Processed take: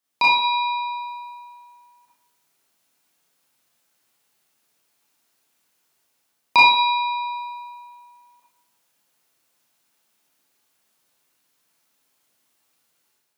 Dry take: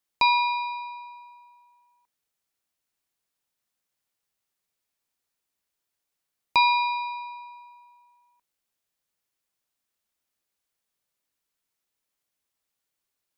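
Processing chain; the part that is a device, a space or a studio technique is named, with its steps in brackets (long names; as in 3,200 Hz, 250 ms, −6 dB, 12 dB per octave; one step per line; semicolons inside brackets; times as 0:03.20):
far laptop microphone (convolution reverb RT60 0.65 s, pre-delay 26 ms, DRR −6.5 dB; high-pass filter 130 Hz 12 dB per octave; automatic gain control gain up to 7.5 dB)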